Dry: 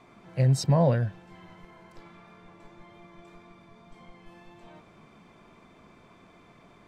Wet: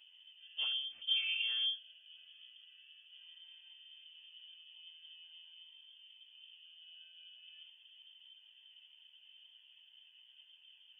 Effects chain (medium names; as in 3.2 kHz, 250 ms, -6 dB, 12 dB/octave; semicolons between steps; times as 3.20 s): local Wiener filter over 41 samples; high-pass 98 Hz 12 dB/octave; treble shelf 2.6 kHz -9 dB; compression 8:1, threshold -30 dBFS, peak gain reduction 12 dB; plain phase-vocoder stretch 1.6×; frequency inversion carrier 3.3 kHz